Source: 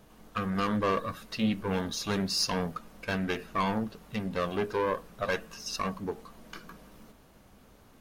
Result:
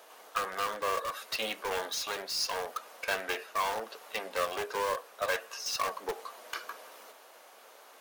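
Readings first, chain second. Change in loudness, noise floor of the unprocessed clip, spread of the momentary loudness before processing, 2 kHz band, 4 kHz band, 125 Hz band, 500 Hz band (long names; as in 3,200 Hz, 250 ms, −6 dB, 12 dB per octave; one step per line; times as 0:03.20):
−2.5 dB, −58 dBFS, 11 LU, +1.5 dB, 0.0 dB, −22.5 dB, −2.5 dB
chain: high-pass filter 500 Hz 24 dB per octave
in parallel at −5 dB: wrap-around overflow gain 32 dB
on the sum: speech leveller within 4 dB 0.5 s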